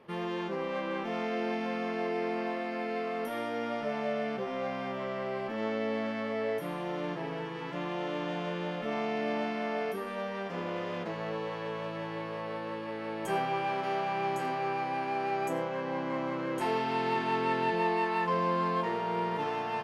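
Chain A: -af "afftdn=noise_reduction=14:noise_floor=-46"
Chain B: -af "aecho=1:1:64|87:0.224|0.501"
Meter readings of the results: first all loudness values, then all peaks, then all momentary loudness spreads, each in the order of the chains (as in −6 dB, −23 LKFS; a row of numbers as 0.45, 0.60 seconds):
−33.5, −32.0 LKFS; −18.0, −15.0 dBFS; 8, 8 LU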